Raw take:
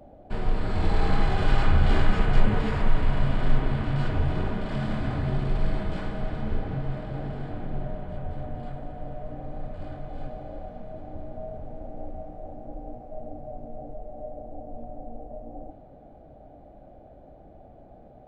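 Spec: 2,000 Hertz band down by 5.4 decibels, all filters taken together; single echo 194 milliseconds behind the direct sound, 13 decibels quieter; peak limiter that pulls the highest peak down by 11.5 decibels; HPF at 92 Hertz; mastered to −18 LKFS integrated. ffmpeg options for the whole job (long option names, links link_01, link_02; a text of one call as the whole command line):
ffmpeg -i in.wav -af "highpass=92,equalizer=frequency=2000:width_type=o:gain=-7.5,alimiter=level_in=2dB:limit=-24dB:level=0:latency=1,volume=-2dB,aecho=1:1:194:0.224,volume=19dB" out.wav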